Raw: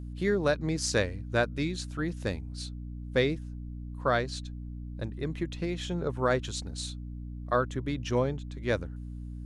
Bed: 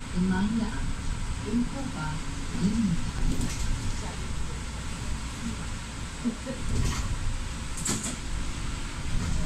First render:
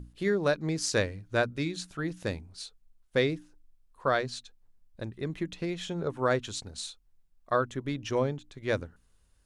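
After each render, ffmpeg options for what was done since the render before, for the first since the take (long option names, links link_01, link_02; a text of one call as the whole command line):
ffmpeg -i in.wav -af "bandreject=frequency=60:width_type=h:width=6,bandreject=frequency=120:width_type=h:width=6,bandreject=frequency=180:width_type=h:width=6,bandreject=frequency=240:width_type=h:width=6,bandreject=frequency=300:width_type=h:width=6" out.wav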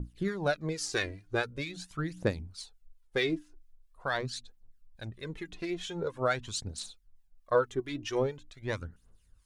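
ffmpeg -i in.wav -filter_complex "[0:a]acrossover=split=1200[link_01][link_02];[link_01]aeval=exprs='val(0)*(1-0.7/2+0.7/2*cos(2*PI*4.5*n/s))':channel_layout=same[link_03];[link_02]aeval=exprs='val(0)*(1-0.7/2-0.7/2*cos(2*PI*4.5*n/s))':channel_layout=same[link_04];[link_03][link_04]amix=inputs=2:normalize=0,aphaser=in_gain=1:out_gain=1:delay=3.1:decay=0.59:speed=0.44:type=triangular" out.wav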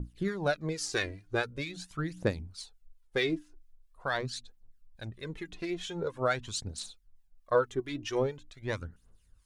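ffmpeg -i in.wav -af anull out.wav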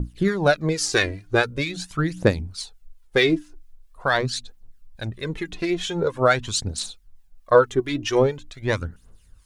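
ffmpeg -i in.wav -af "volume=11dB" out.wav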